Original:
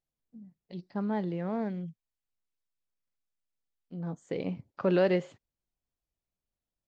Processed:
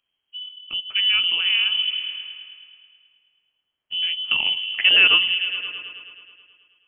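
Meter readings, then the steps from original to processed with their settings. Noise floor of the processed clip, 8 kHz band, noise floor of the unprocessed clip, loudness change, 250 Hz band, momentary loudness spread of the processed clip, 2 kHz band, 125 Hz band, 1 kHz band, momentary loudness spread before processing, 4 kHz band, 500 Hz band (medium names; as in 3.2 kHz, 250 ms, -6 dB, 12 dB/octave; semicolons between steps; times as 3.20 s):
-80 dBFS, no reading, under -85 dBFS, +13.5 dB, -16.5 dB, 22 LU, +24.0 dB, under -15 dB, +2.5 dB, 19 LU, +36.5 dB, -13.0 dB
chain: peaking EQ 130 Hz -3.5 dB 1.6 oct; in parallel at -1 dB: compression, threshold -40 dBFS, peak gain reduction 18 dB; on the sum: high-pass 43 Hz; bass shelf 99 Hz +7 dB; on a send: delay with an opening low-pass 107 ms, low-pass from 200 Hz, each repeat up 1 oct, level -6 dB; on the sum: frequency inversion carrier 3.2 kHz; trim +9 dB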